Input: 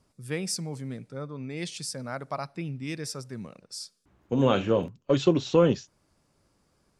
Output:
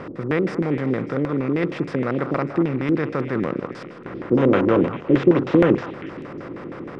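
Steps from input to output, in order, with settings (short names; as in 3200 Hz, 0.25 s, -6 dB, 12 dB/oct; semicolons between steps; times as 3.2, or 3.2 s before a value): per-bin compression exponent 0.4; LFO low-pass square 6.4 Hz 330–1900 Hz; delay with a stepping band-pass 0.199 s, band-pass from 1000 Hz, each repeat 1.4 oct, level -7 dB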